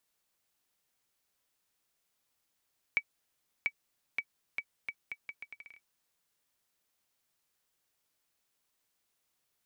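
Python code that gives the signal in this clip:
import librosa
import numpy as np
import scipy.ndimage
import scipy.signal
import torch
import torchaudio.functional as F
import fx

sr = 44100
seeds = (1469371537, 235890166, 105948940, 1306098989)

y = fx.bouncing_ball(sr, first_gap_s=0.69, ratio=0.76, hz=2280.0, decay_ms=61.0, level_db=-16.5)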